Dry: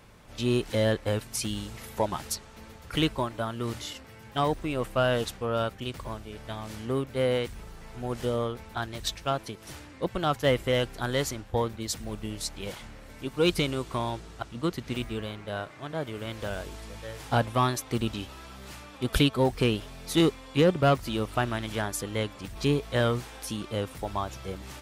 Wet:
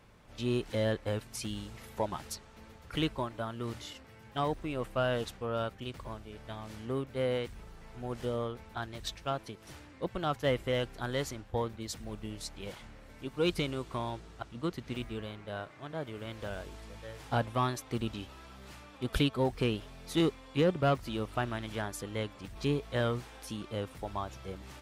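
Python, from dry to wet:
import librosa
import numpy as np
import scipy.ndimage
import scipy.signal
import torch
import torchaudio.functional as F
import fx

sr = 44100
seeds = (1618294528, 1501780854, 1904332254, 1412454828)

y = fx.high_shelf(x, sr, hz=5500.0, db=-5.5)
y = y * 10.0 ** (-5.5 / 20.0)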